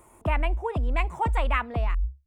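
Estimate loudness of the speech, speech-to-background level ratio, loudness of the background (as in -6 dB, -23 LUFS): -31.0 LUFS, -0.5 dB, -30.5 LUFS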